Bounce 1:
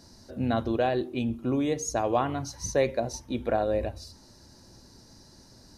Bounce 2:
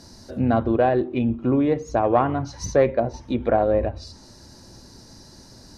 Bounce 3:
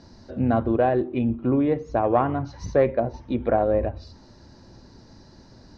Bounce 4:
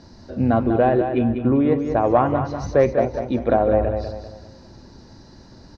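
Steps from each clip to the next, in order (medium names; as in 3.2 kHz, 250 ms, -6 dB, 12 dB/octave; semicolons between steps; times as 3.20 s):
self-modulated delay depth 0.064 ms; low-pass that closes with the level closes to 1.8 kHz, closed at -26.5 dBFS; trim +7 dB
distance through air 190 m; trim -1 dB
feedback delay 196 ms, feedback 38%, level -7.5 dB; trim +3 dB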